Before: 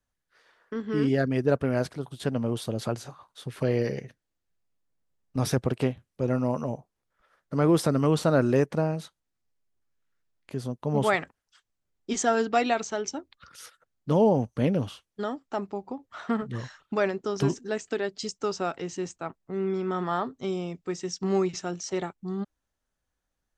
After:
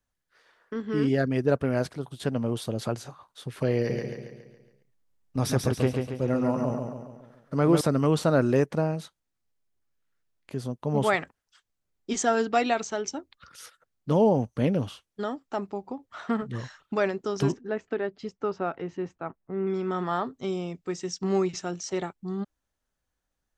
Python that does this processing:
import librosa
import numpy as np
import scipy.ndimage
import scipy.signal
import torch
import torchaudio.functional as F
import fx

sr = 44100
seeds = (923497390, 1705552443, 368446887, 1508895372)

y = fx.echo_feedback(x, sr, ms=139, feedback_pct=50, wet_db=-4.5, at=(3.76, 7.81))
y = fx.lowpass(y, sr, hz=2000.0, slope=12, at=(17.52, 19.67))